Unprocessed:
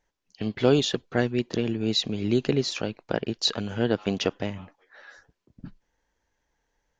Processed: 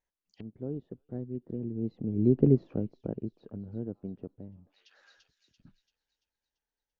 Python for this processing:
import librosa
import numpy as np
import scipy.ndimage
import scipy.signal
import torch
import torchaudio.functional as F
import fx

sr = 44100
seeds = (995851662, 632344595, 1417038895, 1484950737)

y = fx.doppler_pass(x, sr, speed_mps=9, closest_m=2.2, pass_at_s=2.52)
y = fx.echo_wet_highpass(y, sr, ms=339, feedback_pct=46, hz=4400.0, wet_db=-5)
y = fx.env_lowpass_down(y, sr, base_hz=320.0, full_db=-49.5)
y = F.gain(torch.from_numpy(y), 5.5).numpy()